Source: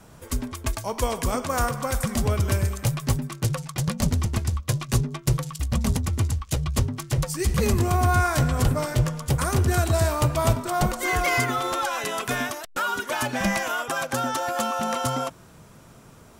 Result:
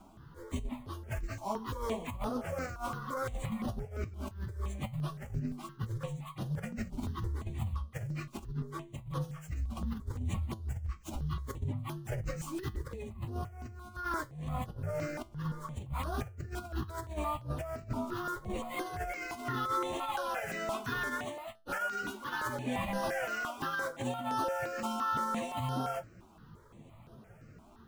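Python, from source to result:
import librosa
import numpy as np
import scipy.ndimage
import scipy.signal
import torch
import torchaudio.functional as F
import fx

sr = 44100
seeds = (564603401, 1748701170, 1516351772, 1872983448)

y = scipy.ndimage.median_filter(x, 9, mode='constant')
y = fx.stretch_vocoder_free(y, sr, factor=1.7)
y = fx.over_compress(y, sr, threshold_db=-29.0, ratio=-0.5)
y = fx.comb_fb(y, sr, f0_hz=110.0, decay_s=0.26, harmonics='all', damping=0.0, mix_pct=50)
y = fx.phaser_held(y, sr, hz=5.8, low_hz=480.0, high_hz=7500.0)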